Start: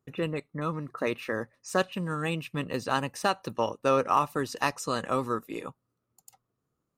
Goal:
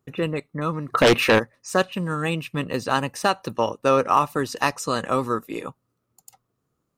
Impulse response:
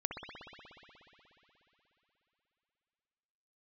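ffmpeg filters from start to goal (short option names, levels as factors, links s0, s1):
-filter_complex "[0:a]asplit=3[s0][s1][s2];[s0]afade=t=out:st=0.92:d=0.02[s3];[s1]aeval=exprs='0.168*sin(PI/2*3.16*val(0)/0.168)':c=same,afade=t=in:st=0.92:d=0.02,afade=t=out:st=1.38:d=0.02[s4];[s2]afade=t=in:st=1.38:d=0.02[s5];[s3][s4][s5]amix=inputs=3:normalize=0,volume=1.88"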